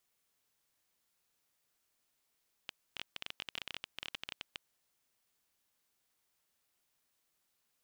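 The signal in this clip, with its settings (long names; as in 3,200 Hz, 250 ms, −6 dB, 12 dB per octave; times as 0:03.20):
Geiger counter clicks 16 per second −22.5 dBFS 1.93 s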